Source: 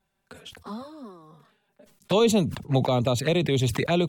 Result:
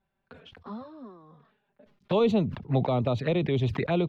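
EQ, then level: air absorption 300 m; -2.0 dB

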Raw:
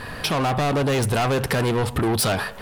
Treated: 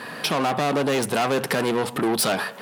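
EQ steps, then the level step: HPF 170 Hz 24 dB/oct; 0.0 dB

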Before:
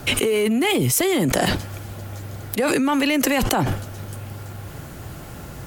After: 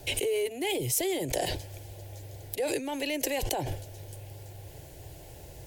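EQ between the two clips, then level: fixed phaser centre 520 Hz, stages 4; -7.5 dB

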